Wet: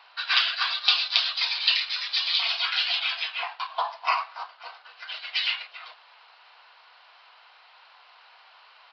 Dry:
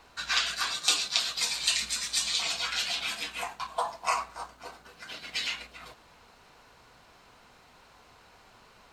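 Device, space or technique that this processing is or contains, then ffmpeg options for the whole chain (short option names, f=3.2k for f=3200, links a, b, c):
musical greeting card: -af "aresample=11025,aresample=44100,highpass=f=730:w=0.5412,highpass=f=730:w=1.3066,equalizer=f=3k:t=o:w=0.42:g=4.5,volume=4dB"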